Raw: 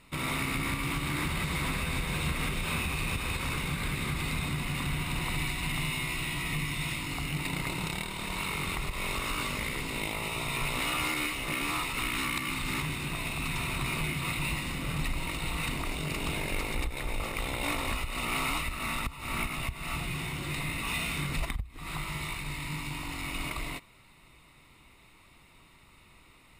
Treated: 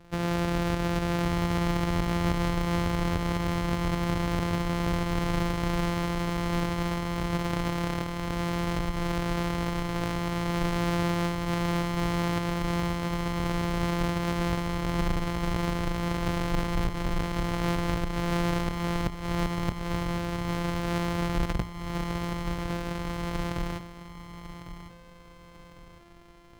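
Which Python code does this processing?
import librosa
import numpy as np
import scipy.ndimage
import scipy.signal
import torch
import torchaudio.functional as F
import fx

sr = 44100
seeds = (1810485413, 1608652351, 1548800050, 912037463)

y = np.r_[np.sort(x[:len(x) // 256 * 256].reshape(-1, 256), axis=1).ravel(), x[len(x) // 256 * 256:]]
y = fx.high_shelf(y, sr, hz=5600.0, db=-11.0)
y = fx.echo_feedback(y, sr, ms=1102, feedback_pct=42, wet_db=-12)
y = F.gain(torch.from_numpy(y), 4.5).numpy()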